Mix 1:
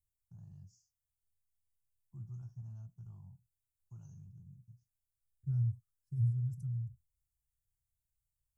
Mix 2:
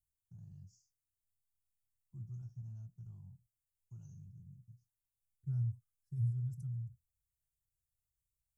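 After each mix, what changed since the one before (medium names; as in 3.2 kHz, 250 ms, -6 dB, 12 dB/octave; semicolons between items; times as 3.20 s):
first voice: add peaking EQ 990 Hz -8.5 dB 1.6 oct; second voice: add high-pass 120 Hz 6 dB/octave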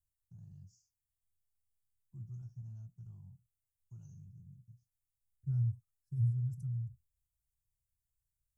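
second voice: remove high-pass 120 Hz 6 dB/octave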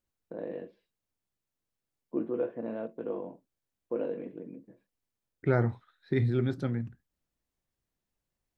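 first voice: add cabinet simulation 260–2200 Hz, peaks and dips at 290 Hz +4 dB, 520 Hz +3 dB, 810 Hz -8 dB, 1.3 kHz -9 dB, 1.9 kHz -8 dB; master: remove inverse Chebyshev band-stop 240–4100 Hz, stop band 40 dB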